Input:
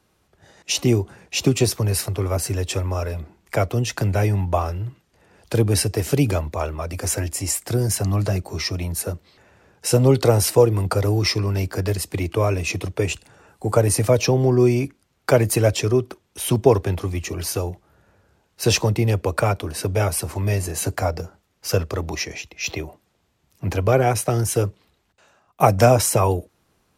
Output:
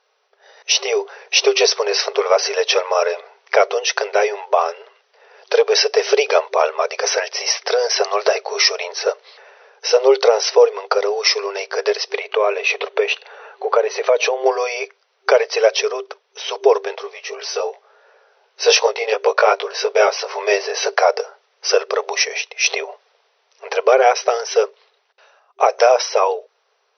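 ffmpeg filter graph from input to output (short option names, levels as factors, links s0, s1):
-filter_complex "[0:a]asettb=1/sr,asplit=3[s0][s1][s2];[s0]atrim=end=12.184[s3];[s1]atrim=start=12.18:end=14.46,asetpts=PTS-STARTPTS,afade=t=in:d=0.004:c=qsin,afade=t=out:st=2.276:d=0.004:c=qsin,equalizer=f=5300:w=4:g=-14,acompressor=threshold=0.0398:ratio=2:attack=3.2:release=140:knee=1:detection=peak[s4];[s2]atrim=start=14.456[s5];[s3][s4]acrossfade=d=0.004:c1=hsin:c2=qsin[s6];[s6][s5]acrossfade=d=0.004:c1=qsin:c2=hsin,asettb=1/sr,asplit=3[s7][s8][s9];[s7]atrim=end=17.034[s10];[s8]atrim=start=17.03:end=20.41,asetpts=PTS-STARTPTS,afade=t=in:d=0.004:c=qsin,afade=t=out:st=3.376:d=0.004:c=qsin,lowpass=9200,flanger=delay=17:depth=2.1:speed=2.7[s11];[s9]atrim=start=20.406[s12];[s10][s11]acrossfade=d=0.004:c1=hsin:c2=qsin[s13];[s13][s12]acrossfade=d=0.004:c1=qsin:c2=hsin,afftfilt=real='re*between(b*sr/4096,390,6100)':imag='im*between(b*sr/4096,390,6100)':win_size=4096:overlap=0.75,dynaudnorm=f=320:g=5:m=3.76,alimiter=level_in=1.58:limit=0.891:release=50:level=0:latency=1,volume=0.891"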